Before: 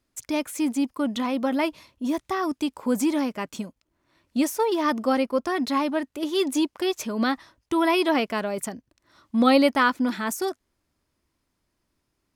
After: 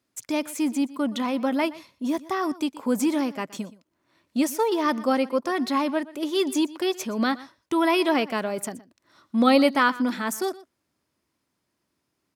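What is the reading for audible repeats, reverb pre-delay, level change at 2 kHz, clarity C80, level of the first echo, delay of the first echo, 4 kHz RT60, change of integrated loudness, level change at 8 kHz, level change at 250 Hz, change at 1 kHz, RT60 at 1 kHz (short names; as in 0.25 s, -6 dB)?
1, none, 0.0 dB, none, -19.0 dB, 0.121 s, none, 0.0 dB, 0.0 dB, 0.0 dB, 0.0 dB, none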